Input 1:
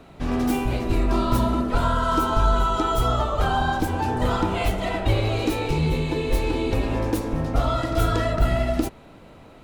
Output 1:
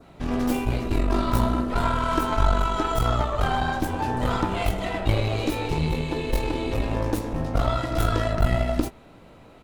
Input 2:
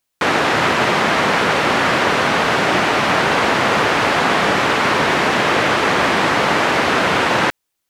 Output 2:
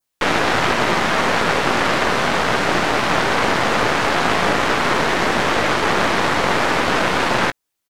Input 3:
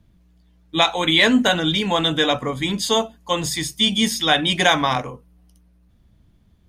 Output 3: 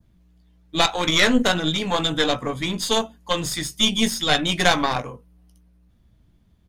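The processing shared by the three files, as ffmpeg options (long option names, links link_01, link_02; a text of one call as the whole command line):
ffmpeg -i in.wav -filter_complex "[0:a]asplit=2[link_01][link_02];[link_02]adelay=17,volume=-11.5dB[link_03];[link_01][link_03]amix=inputs=2:normalize=0,adynamicequalizer=threshold=0.0282:dfrequency=2800:dqfactor=1.7:tfrequency=2800:tqfactor=1.7:attack=5:release=100:ratio=0.375:range=1.5:mode=cutabove:tftype=bell,aeval=exprs='0.891*(cos(1*acos(clip(val(0)/0.891,-1,1)))-cos(1*PI/2))+0.224*(cos(4*acos(clip(val(0)/0.891,-1,1)))-cos(4*PI/2))':channel_layout=same,volume=-2.5dB" out.wav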